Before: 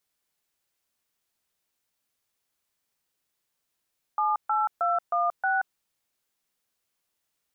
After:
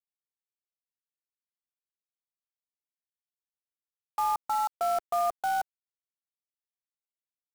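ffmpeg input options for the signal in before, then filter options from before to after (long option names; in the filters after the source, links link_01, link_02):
-f lavfi -i "aevalsrc='0.0596*clip(min(mod(t,0.314),0.179-mod(t,0.314))/0.002,0,1)*(eq(floor(t/0.314),0)*(sin(2*PI*852*mod(t,0.314))+sin(2*PI*1209*mod(t,0.314)))+eq(floor(t/0.314),1)*(sin(2*PI*852*mod(t,0.314))+sin(2*PI*1336*mod(t,0.314)))+eq(floor(t/0.314),2)*(sin(2*PI*697*mod(t,0.314))+sin(2*PI*1336*mod(t,0.314)))+eq(floor(t/0.314),3)*(sin(2*PI*697*mod(t,0.314))+sin(2*PI*1209*mod(t,0.314)))+eq(floor(t/0.314),4)*(sin(2*PI*770*mod(t,0.314))+sin(2*PI*1477*mod(t,0.314))))':duration=1.57:sample_rate=44100"
-af "lowpass=frequency=1100:width=0.5412,lowpass=frequency=1100:width=1.3066,equalizer=frequency=380:width_type=o:width=0.4:gain=10,acrusher=bits=7:dc=4:mix=0:aa=0.000001"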